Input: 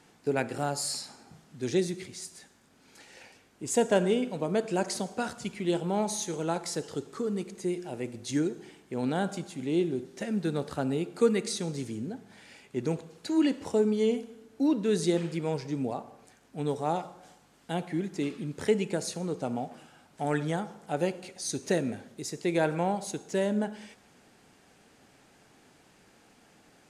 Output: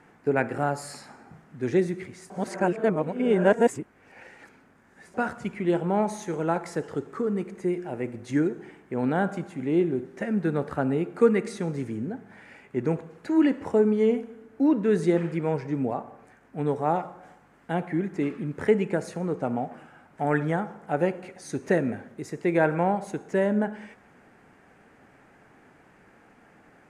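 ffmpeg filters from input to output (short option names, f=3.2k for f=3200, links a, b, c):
-filter_complex "[0:a]asplit=3[a][b][c];[a]atrim=end=2.302[d];[b]atrim=start=2.298:end=5.142,asetpts=PTS-STARTPTS,areverse[e];[c]atrim=start=5.138[f];[d][e]acrossfade=d=0.004:c1=hsin:c2=hsin[g];[g][f]acrossfade=d=0.004:c1=hsin:c2=hsin,highshelf=f=2.7k:t=q:w=1.5:g=-12,volume=4dB"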